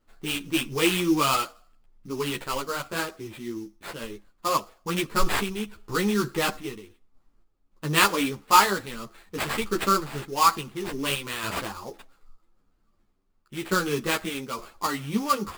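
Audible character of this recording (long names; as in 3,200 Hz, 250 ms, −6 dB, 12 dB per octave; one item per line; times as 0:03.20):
sample-and-hold tremolo
aliases and images of a low sample rate 5,900 Hz, jitter 20%
a shimmering, thickened sound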